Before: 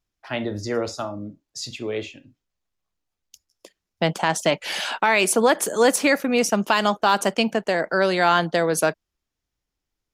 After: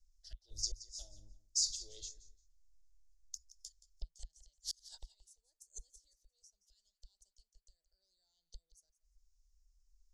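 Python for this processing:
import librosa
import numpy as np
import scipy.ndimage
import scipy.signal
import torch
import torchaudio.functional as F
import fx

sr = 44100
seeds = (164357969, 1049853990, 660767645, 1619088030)

y = fx.gate_flip(x, sr, shuts_db=-16.0, range_db=-39)
y = scipy.signal.sosfilt(scipy.signal.cheby2(4, 50, [110.0, 2600.0], 'bandstop', fs=sr, output='sos'), y)
y = fx.air_absorb(y, sr, metres=150.0)
y = fx.echo_feedback(y, sr, ms=174, feedback_pct=20, wet_db=-16.5)
y = fx.filter_held_notch(y, sr, hz=2.4, low_hz=910.0, high_hz=3000.0)
y = y * librosa.db_to_amplitude(17.5)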